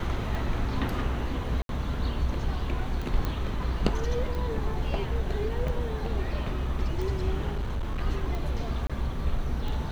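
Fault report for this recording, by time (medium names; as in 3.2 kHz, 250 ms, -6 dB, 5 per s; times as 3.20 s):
tick 45 rpm
1.62–1.69 s: dropout 72 ms
3.25 s: pop -17 dBFS
7.51–8.00 s: clipped -26 dBFS
8.87–8.90 s: dropout 26 ms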